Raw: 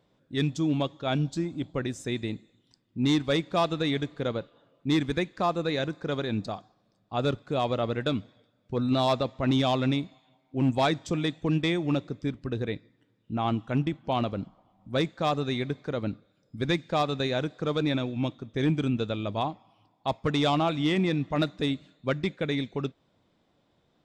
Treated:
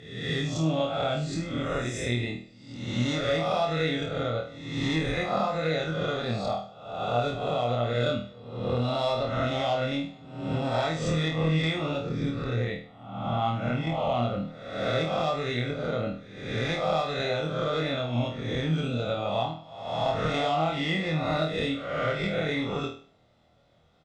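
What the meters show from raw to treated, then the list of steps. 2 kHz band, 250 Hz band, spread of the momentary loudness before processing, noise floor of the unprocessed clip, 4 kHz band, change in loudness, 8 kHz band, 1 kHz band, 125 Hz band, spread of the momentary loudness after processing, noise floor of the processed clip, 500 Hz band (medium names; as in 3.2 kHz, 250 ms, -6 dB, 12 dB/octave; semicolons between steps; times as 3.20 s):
+3.0 dB, -3.0 dB, 10 LU, -70 dBFS, +1.0 dB, 0.0 dB, +2.5 dB, +1.5 dB, +1.0 dB, 8 LU, -52 dBFS, +2.0 dB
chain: reverse spectral sustain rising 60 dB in 0.87 s; Bessel low-pass 7.8 kHz, order 2; comb 1.5 ms, depth 50%; compression, threshold -26 dBFS, peak gain reduction 9.5 dB; flutter echo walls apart 4.3 m, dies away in 0.42 s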